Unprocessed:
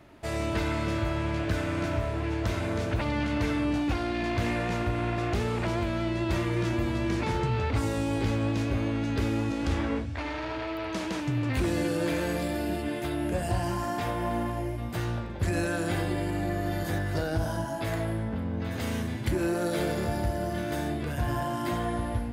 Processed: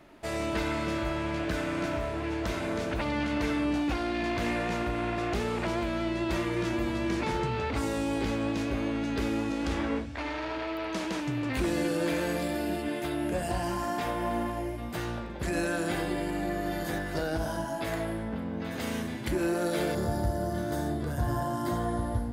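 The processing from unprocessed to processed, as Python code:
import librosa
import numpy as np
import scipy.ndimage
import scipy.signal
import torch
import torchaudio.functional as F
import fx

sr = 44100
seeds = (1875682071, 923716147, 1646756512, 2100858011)

y = fx.peak_eq(x, sr, hz=fx.steps((0.0, 96.0), (19.95, 2500.0)), db=-14.0, octaves=0.65)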